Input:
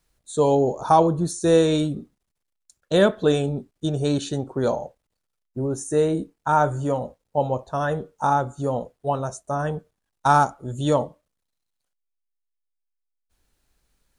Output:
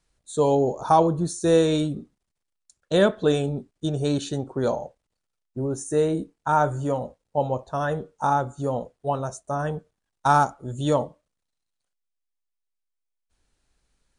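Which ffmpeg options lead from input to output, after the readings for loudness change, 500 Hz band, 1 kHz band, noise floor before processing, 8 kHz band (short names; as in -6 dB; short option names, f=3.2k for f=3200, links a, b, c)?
-1.5 dB, -1.5 dB, -1.5 dB, -79 dBFS, -1.5 dB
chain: -af "aresample=22050,aresample=44100,volume=-1.5dB"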